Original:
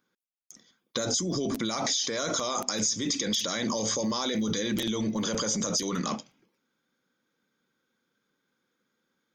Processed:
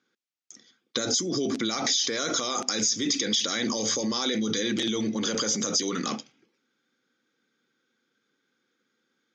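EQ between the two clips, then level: speaker cabinet 160–6900 Hz, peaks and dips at 180 Hz -7 dB, 610 Hz -8 dB, 990 Hz -9 dB; +4.0 dB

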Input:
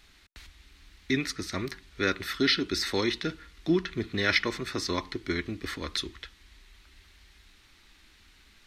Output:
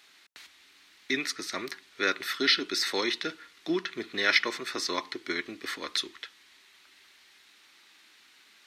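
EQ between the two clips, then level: HPF 240 Hz 12 dB/oct; low shelf 310 Hz -10.5 dB; +2.0 dB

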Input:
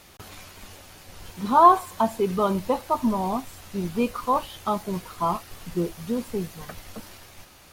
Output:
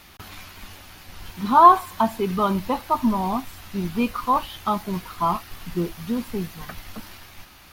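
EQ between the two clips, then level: graphic EQ 125/500/8000 Hz -4/-9/-8 dB; +5.0 dB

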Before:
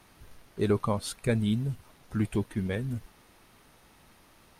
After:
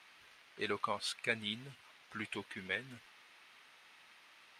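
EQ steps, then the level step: band-pass 2500 Hz, Q 1.2; +4.5 dB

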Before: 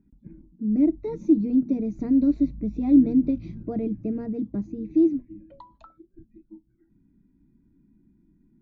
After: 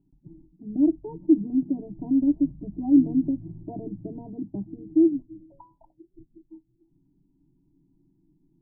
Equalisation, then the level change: dynamic EQ 190 Hz, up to +6 dB, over -37 dBFS, Q 2.6; brick-wall FIR low-pass 1000 Hz; fixed phaser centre 330 Hz, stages 8; 0.0 dB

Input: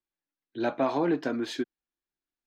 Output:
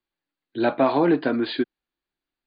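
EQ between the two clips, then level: brick-wall FIR low-pass 4900 Hz; +7.0 dB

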